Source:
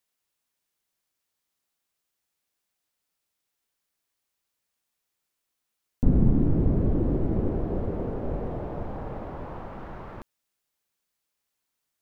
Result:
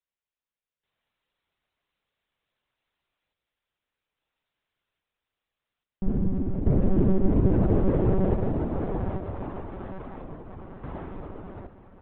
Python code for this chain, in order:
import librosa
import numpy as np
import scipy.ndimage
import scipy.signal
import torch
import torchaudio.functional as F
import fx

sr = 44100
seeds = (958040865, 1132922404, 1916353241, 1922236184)

p1 = fx.echo_diffused(x, sr, ms=936, feedback_pct=49, wet_db=-5)
p2 = np.sign(p1) * np.maximum(np.abs(p1) - 10.0 ** (-34.5 / 20.0), 0.0)
p3 = p1 + F.gain(torch.from_numpy(p2), -11.0).numpy()
p4 = fx.lpc_monotone(p3, sr, seeds[0], pitch_hz=190.0, order=16)
p5 = fx.tremolo_random(p4, sr, seeds[1], hz=1.2, depth_pct=80)
y = F.gain(torch.from_numpy(p5), 4.5).numpy()